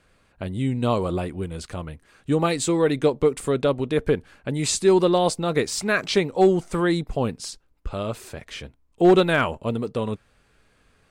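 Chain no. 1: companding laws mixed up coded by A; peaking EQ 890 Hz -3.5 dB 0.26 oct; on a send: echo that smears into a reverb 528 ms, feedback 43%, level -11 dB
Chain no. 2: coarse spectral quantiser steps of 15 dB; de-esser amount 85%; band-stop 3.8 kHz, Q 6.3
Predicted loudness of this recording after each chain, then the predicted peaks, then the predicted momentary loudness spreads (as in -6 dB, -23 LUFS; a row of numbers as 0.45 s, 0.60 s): -23.0 LUFS, -23.5 LUFS; -7.5 dBFS, -8.5 dBFS; 18 LU, 17 LU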